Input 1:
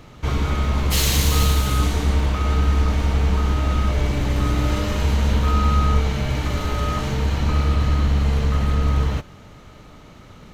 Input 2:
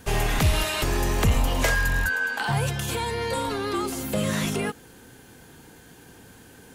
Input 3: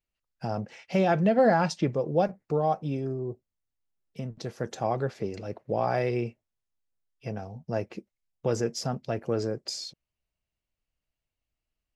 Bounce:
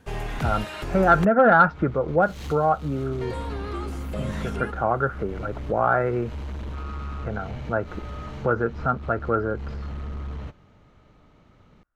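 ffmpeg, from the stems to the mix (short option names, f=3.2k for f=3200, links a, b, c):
-filter_complex "[0:a]asoftclip=type=hard:threshold=-18dB,adelay=1300,volume=-18dB[a];[1:a]volume=-13dB,asplit=3[b][c][d];[b]atrim=end=1.25,asetpts=PTS-STARTPTS,afade=t=out:st=1.246:d=0.004:c=hsin[e];[c]atrim=start=1.25:end=3.21,asetpts=PTS-STARTPTS,volume=0[f];[d]atrim=start=3.21,asetpts=PTS-STARTPTS,afade=t=in:d=0.004:c=hsin[g];[e][f][g]concat=n=3:v=0:a=1[h];[2:a]lowpass=f=1.4k:t=q:w=12,volume=-4dB,asplit=2[i][j];[j]apad=whole_len=521732[k];[a][k]sidechaincompress=threshold=-35dB:ratio=8:attack=16:release=175[l];[l][h][i]amix=inputs=3:normalize=0,lowpass=f=2.3k:p=1,acontrast=71"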